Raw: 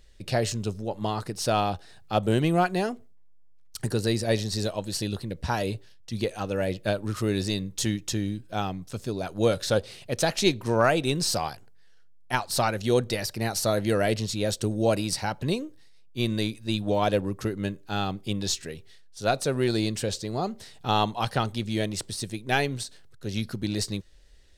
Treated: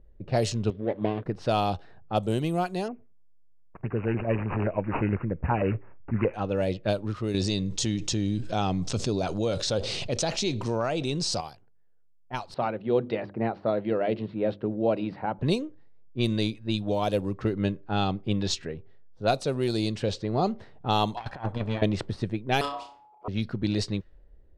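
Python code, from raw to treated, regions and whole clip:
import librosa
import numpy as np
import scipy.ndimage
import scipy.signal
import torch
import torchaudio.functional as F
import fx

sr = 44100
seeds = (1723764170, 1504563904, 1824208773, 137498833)

y = fx.chain(x, sr, fx.median_filter(points=41),
    fx.cabinet(low_hz=160.0, low_slope=12, high_hz=4800.0, hz=(190.0, 860.0, 1400.0, 3400.0), db=(-7, -9, -6, 9)), at=(0.7, 1.26))
y = fx.chain(y, sr, fx.filter_lfo_notch(shape='saw_down', hz=9.5, low_hz=380.0, high_hz=3500.0, q=1.2),
    fx.resample_bad(factor=8, down='none', up='filtered'), at=(2.88, 6.34))
y = fx.chain(y, sr, fx.lowpass(hz=7200.0, slope=24),
    fx.env_flatten(amount_pct=70), at=(7.34, 11.41))
y = fx.chain(y, sr, fx.bandpass_edges(low_hz=170.0, high_hz=7000.0),
    fx.air_absorb(metres=460.0),
    fx.hum_notches(base_hz=50, count=7), at=(12.54, 15.39))
y = fx.chain(y, sr, fx.lower_of_two(delay_ms=1.2),
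    fx.low_shelf(hz=500.0, db=-9.5),
    fx.over_compress(threshold_db=-35.0, ratio=-0.5), at=(21.17, 21.82))
y = fx.chain(y, sr, fx.ring_mod(carrier_hz=850.0),
    fx.room_flutter(wall_m=5.5, rt60_s=0.44), at=(22.61, 23.28))
y = fx.env_lowpass(y, sr, base_hz=590.0, full_db=-19.5)
y = fx.dynamic_eq(y, sr, hz=1700.0, q=2.0, threshold_db=-46.0, ratio=4.0, max_db=-7)
y = fx.rider(y, sr, range_db=10, speed_s=0.5)
y = F.gain(torch.from_numpy(y), -2.0).numpy()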